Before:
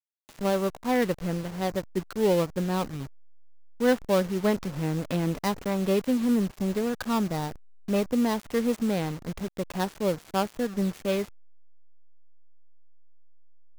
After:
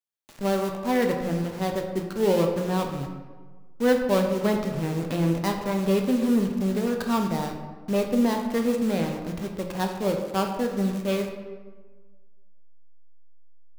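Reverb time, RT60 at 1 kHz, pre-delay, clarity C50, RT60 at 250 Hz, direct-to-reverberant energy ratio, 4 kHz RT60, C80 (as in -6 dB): 1.4 s, 1.4 s, 8 ms, 5.5 dB, 1.4 s, 3.0 dB, 0.85 s, 7.5 dB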